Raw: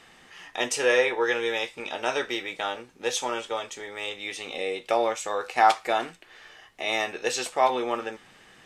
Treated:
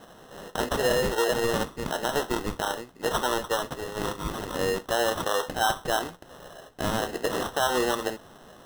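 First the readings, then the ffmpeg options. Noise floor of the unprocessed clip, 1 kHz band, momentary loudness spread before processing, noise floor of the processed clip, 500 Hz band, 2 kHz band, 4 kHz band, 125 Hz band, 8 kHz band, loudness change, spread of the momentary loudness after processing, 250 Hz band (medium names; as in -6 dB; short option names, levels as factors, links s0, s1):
-55 dBFS, -2.5 dB, 12 LU, -51 dBFS, 0.0 dB, -2.5 dB, 0.0 dB, +15.0 dB, +0.5 dB, -1.0 dB, 12 LU, +4.5 dB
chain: -af "alimiter=limit=0.119:level=0:latency=1:release=116,acrusher=samples=19:mix=1:aa=0.000001,volume=1.58"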